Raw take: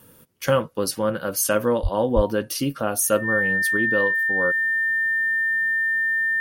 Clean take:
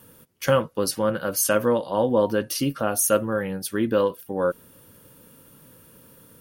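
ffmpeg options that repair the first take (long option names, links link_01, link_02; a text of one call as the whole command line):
ffmpeg -i in.wav -filter_complex "[0:a]bandreject=frequency=1800:width=30,asplit=3[link_01][link_02][link_03];[link_01]afade=type=out:start_time=1.82:duration=0.02[link_04];[link_02]highpass=frequency=140:width=0.5412,highpass=frequency=140:width=1.3066,afade=type=in:start_time=1.82:duration=0.02,afade=type=out:start_time=1.94:duration=0.02[link_05];[link_03]afade=type=in:start_time=1.94:duration=0.02[link_06];[link_04][link_05][link_06]amix=inputs=3:normalize=0,asplit=3[link_07][link_08][link_09];[link_07]afade=type=out:start_time=2.15:duration=0.02[link_10];[link_08]highpass=frequency=140:width=0.5412,highpass=frequency=140:width=1.3066,afade=type=in:start_time=2.15:duration=0.02,afade=type=out:start_time=2.27:duration=0.02[link_11];[link_09]afade=type=in:start_time=2.27:duration=0.02[link_12];[link_10][link_11][link_12]amix=inputs=3:normalize=0,asetnsamples=nb_out_samples=441:pad=0,asendcmd='3.77 volume volume 3dB',volume=0dB" out.wav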